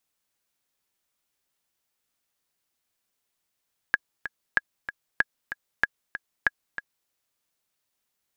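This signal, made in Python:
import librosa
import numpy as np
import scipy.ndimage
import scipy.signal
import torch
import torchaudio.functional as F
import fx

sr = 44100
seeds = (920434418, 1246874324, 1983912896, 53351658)

y = fx.click_track(sr, bpm=190, beats=2, bars=5, hz=1660.0, accent_db=12.0, level_db=-6.5)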